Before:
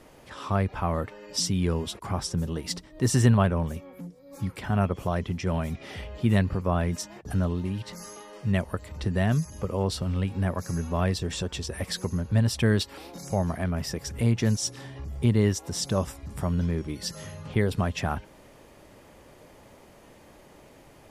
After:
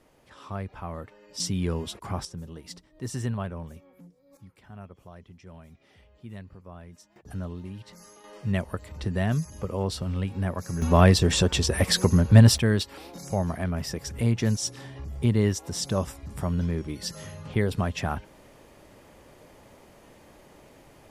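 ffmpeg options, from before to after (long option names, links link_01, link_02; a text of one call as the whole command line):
ffmpeg -i in.wav -af "asetnsamples=nb_out_samples=441:pad=0,asendcmd='1.4 volume volume -2dB;2.25 volume volume -10.5dB;4.37 volume volume -19.5dB;7.16 volume volume -8.5dB;8.24 volume volume -1.5dB;10.82 volume volume 9dB;12.58 volume volume -0.5dB',volume=-9dB" out.wav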